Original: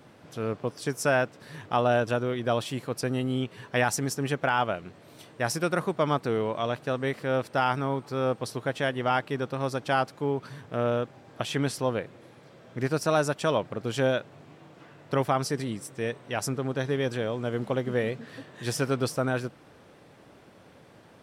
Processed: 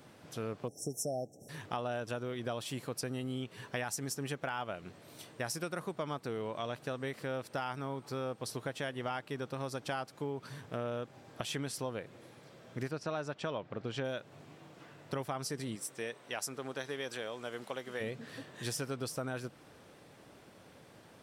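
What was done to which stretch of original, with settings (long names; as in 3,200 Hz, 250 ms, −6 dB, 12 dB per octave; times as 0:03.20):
0:00.68–0:01.49: time-frequency box erased 820–5,300 Hz
0:12.91–0:14.05: low-pass filter 3,800 Hz
0:15.75–0:18.00: high-pass filter 360 Hz → 1,100 Hz 6 dB per octave
whole clip: high-shelf EQ 4,200 Hz +7 dB; downward compressor 4 to 1, threshold −31 dBFS; level −4 dB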